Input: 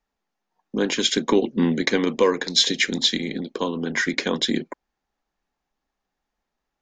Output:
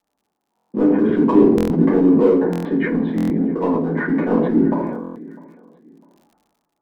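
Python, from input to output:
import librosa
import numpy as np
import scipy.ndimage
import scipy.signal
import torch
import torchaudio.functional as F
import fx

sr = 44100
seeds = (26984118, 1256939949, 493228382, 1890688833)

p1 = scipy.signal.sosfilt(scipy.signal.butter(4, 1200.0, 'lowpass', fs=sr, output='sos'), x)
p2 = fx.echo_feedback(p1, sr, ms=652, feedback_pct=27, wet_db=-22.0)
p3 = fx.env_lowpass_down(p2, sr, base_hz=460.0, full_db=-16.5)
p4 = scipy.signal.sosfilt(scipy.signal.butter(2, 150.0, 'highpass', fs=sr, output='sos'), p3)
p5 = np.clip(p4, -10.0 ** (-25.0 / 20.0), 10.0 ** (-25.0 / 20.0))
p6 = p4 + (p5 * 10.0 ** (-5.5 / 20.0))
p7 = fx.room_shoebox(p6, sr, seeds[0], volume_m3=55.0, walls='mixed', distance_m=1.6)
p8 = fx.dmg_crackle(p7, sr, seeds[1], per_s=78.0, level_db=-52.0)
p9 = fx.buffer_glitch(p8, sr, at_s=(0.56, 1.56, 2.51, 3.16, 5.02), block=1024, repeats=5)
p10 = fx.sustainer(p9, sr, db_per_s=37.0)
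y = p10 * 10.0 ** (-4.5 / 20.0)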